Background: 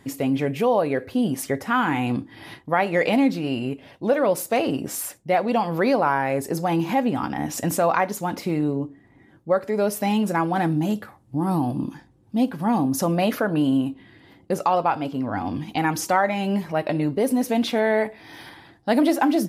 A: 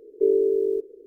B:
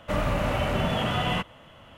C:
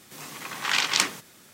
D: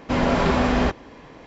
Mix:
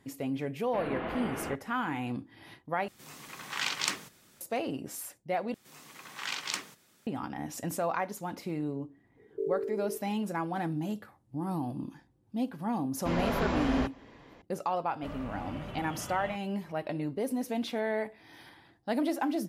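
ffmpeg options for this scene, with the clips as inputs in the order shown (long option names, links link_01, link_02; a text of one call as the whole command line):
ffmpeg -i bed.wav -i cue0.wav -i cue1.wav -i cue2.wav -i cue3.wav -filter_complex "[4:a]asplit=2[link_01][link_02];[3:a]asplit=2[link_03][link_04];[0:a]volume=-11dB[link_05];[link_01]highpass=frequency=520:width_type=q:width=0.5412,highpass=frequency=520:width_type=q:width=1.307,lowpass=frequency=3400:width_type=q:width=0.5176,lowpass=frequency=3400:width_type=q:width=0.7071,lowpass=frequency=3400:width_type=q:width=1.932,afreqshift=-340[link_06];[link_03]lowshelf=frequency=100:gain=9[link_07];[2:a]highshelf=frequency=4300:gain=-6.5[link_08];[link_05]asplit=3[link_09][link_10][link_11];[link_09]atrim=end=2.884[link_12];[link_07]atrim=end=1.53,asetpts=PTS-STARTPTS,volume=-8.5dB[link_13];[link_10]atrim=start=4.406:end=5.544[link_14];[link_04]atrim=end=1.53,asetpts=PTS-STARTPTS,volume=-12dB[link_15];[link_11]atrim=start=7.066[link_16];[link_06]atrim=end=1.46,asetpts=PTS-STARTPTS,volume=-12dB,afade=type=in:duration=0.004:curve=hsin,afade=type=out:start_time=1.456:duration=0.004:curve=hsin,adelay=640[link_17];[1:a]atrim=end=1.06,asetpts=PTS-STARTPTS,volume=-13.5dB,afade=type=in:duration=0.004:curve=hsin,afade=type=out:start_time=1.056:duration=0.004:curve=hsin,adelay=9170[link_18];[link_02]atrim=end=1.46,asetpts=PTS-STARTPTS,volume=-10.5dB,afade=type=in:duration=0.004:curve=hsin,afade=type=out:start_time=1.456:duration=0.004:curve=hsin,adelay=12960[link_19];[link_08]atrim=end=1.97,asetpts=PTS-STARTPTS,volume=-16.5dB,afade=type=in:duration=0.004:curve=hsin,afade=type=out:start_time=1.966:duration=0.004:curve=hsin,adelay=14940[link_20];[link_12][link_13]acrossfade=duration=0.004:curve1=hsin:curve2=hsin[link_21];[link_21][link_14]acrossfade=duration=0.004:curve1=hsin:curve2=hsin[link_22];[link_22][link_15]acrossfade=duration=0.004:curve1=hsin:curve2=hsin[link_23];[link_23][link_16]acrossfade=duration=0.004:curve1=hsin:curve2=hsin[link_24];[link_24][link_17][link_18][link_19][link_20]amix=inputs=5:normalize=0" out.wav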